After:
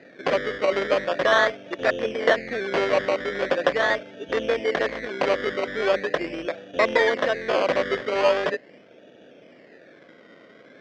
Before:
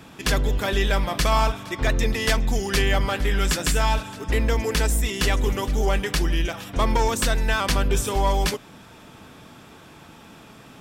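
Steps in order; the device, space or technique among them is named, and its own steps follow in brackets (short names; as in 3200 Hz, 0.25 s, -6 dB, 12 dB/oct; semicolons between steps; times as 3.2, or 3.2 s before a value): Wiener smoothing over 41 samples; circuit-bent sampling toy (decimation with a swept rate 20×, swing 60% 0.41 Hz; speaker cabinet 480–4200 Hz, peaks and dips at 550 Hz +8 dB, 860 Hz -9 dB, 1300 Hz -5 dB, 1800 Hz +6 dB, 2700 Hz -5 dB, 4100 Hz -6 dB); gain +7 dB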